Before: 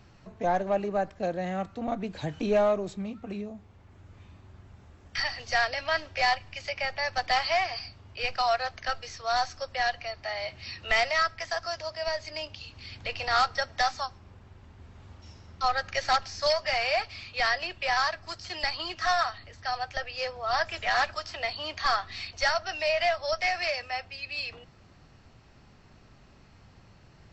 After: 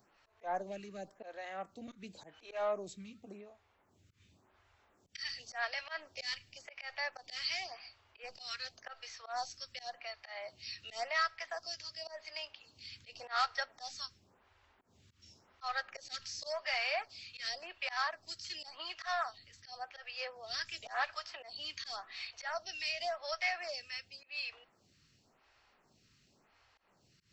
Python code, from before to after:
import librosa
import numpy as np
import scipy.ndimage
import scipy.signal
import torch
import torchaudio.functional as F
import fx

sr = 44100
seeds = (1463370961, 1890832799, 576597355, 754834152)

y = fx.auto_swell(x, sr, attack_ms=124.0)
y = fx.tilt_eq(y, sr, slope=2.5)
y = fx.stagger_phaser(y, sr, hz=0.91)
y = y * librosa.db_to_amplitude(-7.5)